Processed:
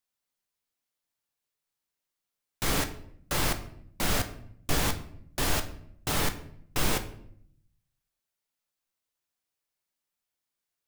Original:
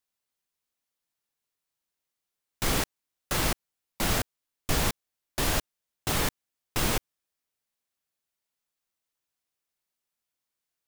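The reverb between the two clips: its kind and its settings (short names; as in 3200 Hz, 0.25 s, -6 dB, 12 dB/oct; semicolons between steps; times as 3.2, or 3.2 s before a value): shoebox room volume 120 m³, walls mixed, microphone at 0.37 m; gain -1.5 dB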